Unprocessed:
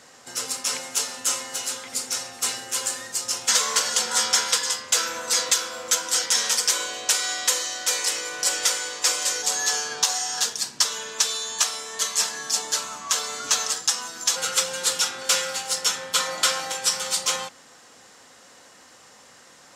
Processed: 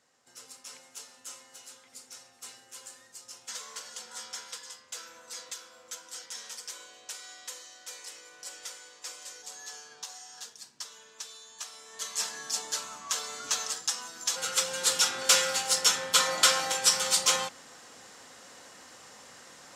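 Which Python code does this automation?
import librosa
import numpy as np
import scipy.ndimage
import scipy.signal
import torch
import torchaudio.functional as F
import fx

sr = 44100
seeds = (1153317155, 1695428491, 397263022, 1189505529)

y = fx.gain(x, sr, db=fx.line((11.55, -20.0), (12.26, -8.0), (14.25, -8.0), (15.18, -0.5)))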